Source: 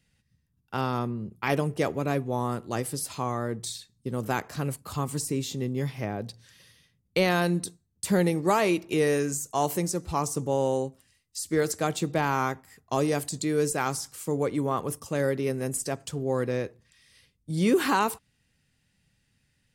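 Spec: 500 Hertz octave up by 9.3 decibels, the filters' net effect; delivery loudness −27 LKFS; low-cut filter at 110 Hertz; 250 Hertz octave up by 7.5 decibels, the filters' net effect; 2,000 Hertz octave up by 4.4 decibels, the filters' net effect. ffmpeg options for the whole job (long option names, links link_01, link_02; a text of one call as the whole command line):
ffmpeg -i in.wav -af "highpass=110,equalizer=frequency=250:width_type=o:gain=7,equalizer=frequency=500:width_type=o:gain=9,equalizer=frequency=2000:width_type=o:gain=5,volume=-6dB" out.wav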